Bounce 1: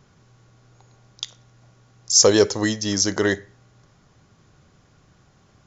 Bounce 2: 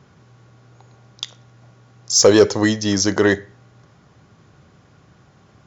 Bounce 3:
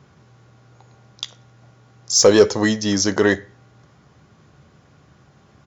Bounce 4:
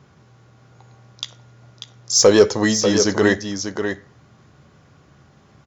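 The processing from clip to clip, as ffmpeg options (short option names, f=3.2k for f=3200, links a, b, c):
-af "highpass=71,highshelf=f=5.7k:g=-11,acontrast=47"
-filter_complex "[0:a]asplit=2[a][b];[b]adelay=14,volume=-11.5dB[c];[a][c]amix=inputs=2:normalize=0,volume=-1dB"
-af "aecho=1:1:592:0.422"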